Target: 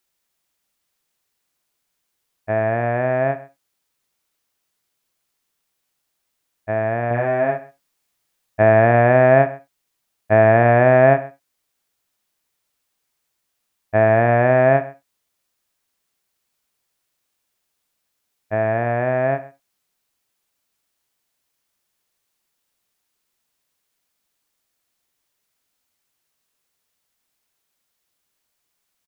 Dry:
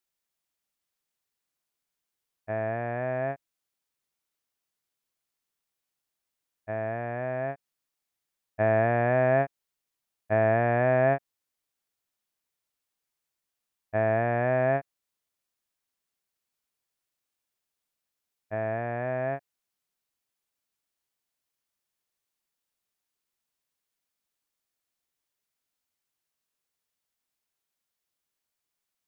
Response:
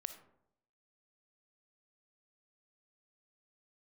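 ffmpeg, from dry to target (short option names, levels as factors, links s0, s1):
-filter_complex "[0:a]asettb=1/sr,asplit=3[s0][s1][s2];[s0]atrim=end=7.074[s3];[s1]atrim=start=7.07:end=8.63,asetpts=PTS-STARTPTS,afade=t=in:d=0.004:c=qsin,afade=t=out:st=1.556:d=0.004:c=qsin,asplit=2[s4][s5];[s5]adelay=34,volume=0.708[s6];[s4][s6]amix=inputs=2:normalize=0,atrim=end_sample=68796[s7];[s2]atrim=start=8.626[s8];[s3][s7]acrossfade=d=0.004:c1=hsin:c2=qsin[s9];[s9][s8]acrossfade=d=0.004:c1=qsin:c2=hsin,asplit=2[s10][s11];[s11]adelay=128.3,volume=0.112,highshelf=f=4000:g=-2.89[s12];[s10][s12]amix=inputs=2:normalize=0,asplit=2[s13][s14];[1:a]atrim=start_sample=2205,atrim=end_sample=3969[s15];[s14][s15]afir=irnorm=-1:irlink=0,volume=1.68[s16];[s13][s16]amix=inputs=2:normalize=0,volume=1.5"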